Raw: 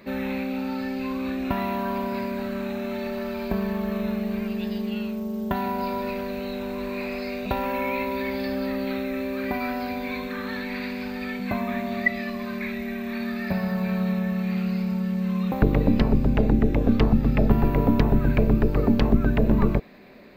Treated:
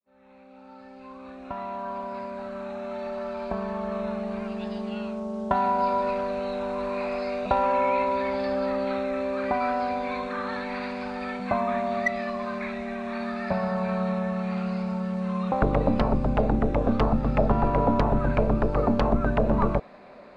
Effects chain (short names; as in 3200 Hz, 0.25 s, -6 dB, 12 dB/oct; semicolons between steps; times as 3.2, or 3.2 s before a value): opening faded in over 5.35 s; downsampling 22050 Hz; in parallel at -4 dB: hard clip -15.5 dBFS, distortion -13 dB; on the sum: band shelf 860 Hz +10 dB; gain -8 dB